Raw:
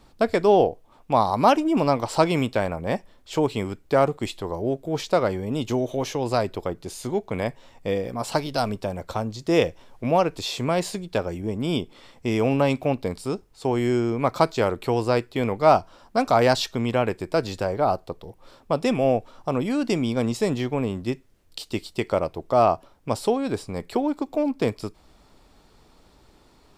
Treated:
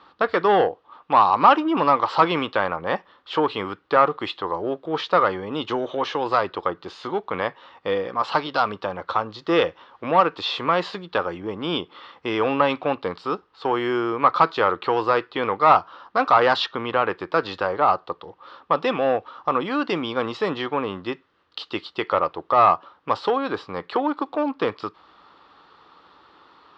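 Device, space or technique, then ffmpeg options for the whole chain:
overdrive pedal into a guitar cabinet: -filter_complex "[0:a]asplit=2[link_01][link_02];[link_02]highpass=frequency=720:poles=1,volume=15dB,asoftclip=type=tanh:threshold=-3.5dB[link_03];[link_01][link_03]amix=inputs=2:normalize=0,lowpass=frequency=4900:poles=1,volume=-6dB,highpass=110,equalizer=frequency=130:width_type=q:width=4:gain=-9,equalizer=frequency=230:width_type=q:width=4:gain=-9,equalizer=frequency=400:width_type=q:width=4:gain=-4,equalizer=frequency=650:width_type=q:width=4:gain=-9,equalizer=frequency=1200:width_type=q:width=4:gain=8,equalizer=frequency=2300:width_type=q:width=4:gain=-8,lowpass=frequency=3700:width=0.5412,lowpass=frequency=3700:width=1.3066,asettb=1/sr,asplit=3[link_04][link_05][link_06];[link_04]atrim=end=16.664[link_07];[link_05]atrim=start=16.66:end=17.09,asetpts=PTS-STARTPTS,afade=type=in:duration=0.004:curve=qsin,afade=type=out:start_time=0.426:duration=0.004:curve=qsin,lowpass=frequency=3600:poles=1[link_08];[link_06]atrim=start=17.086[link_09];[link_07][link_08]acrossfade=duration=0.004:curve1=hsin:curve2=qsin[link_10];[link_10][link_09]acrossfade=duration=0.004:curve1=qsin:curve2=hsin"

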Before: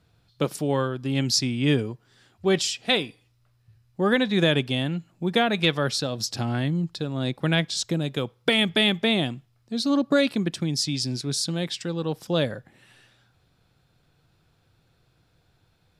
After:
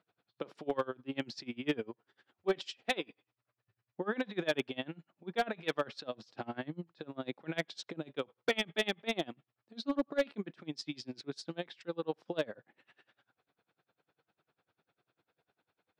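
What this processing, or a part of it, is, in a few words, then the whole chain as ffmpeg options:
helicopter radio: -af "highpass=320,lowpass=2600,aeval=exprs='val(0)*pow(10,-27*(0.5-0.5*cos(2*PI*10*n/s))/20)':channel_layout=same,asoftclip=type=hard:threshold=-20dB,volume=-2dB"

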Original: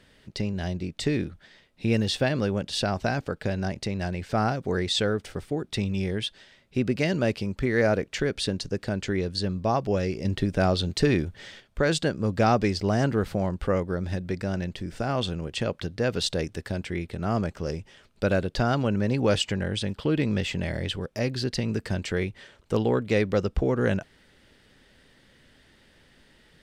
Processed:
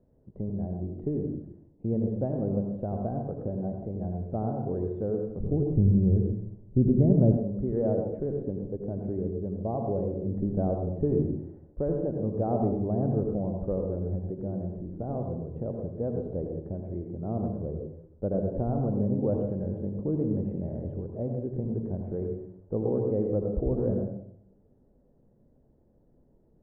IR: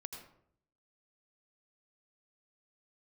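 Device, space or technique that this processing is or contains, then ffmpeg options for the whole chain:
next room: -filter_complex "[0:a]lowpass=frequency=690:width=0.5412,lowpass=frequency=690:width=1.3066[link_01];[1:a]atrim=start_sample=2205[link_02];[link_01][link_02]afir=irnorm=-1:irlink=0,asettb=1/sr,asplit=3[link_03][link_04][link_05];[link_03]atrim=end=5.404[link_06];[link_04]atrim=start=5.4:end=7.37,asetpts=PTS-STARTPTS,afade=type=in:duration=0.004:curve=qsin,afade=type=out:start_time=1.966:duration=0.004:curve=qsin,aemphasis=mode=reproduction:type=riaa[link_07];[link_05]atrim=start=7.366[link_08];[link_06][link_07]acrossfade=duration=0.004:curve1=hsin:curve2=qsin[link_09];[link_09][link_08]acrossfade=duration=0.004:curve1=qsin:curve2=hsin"

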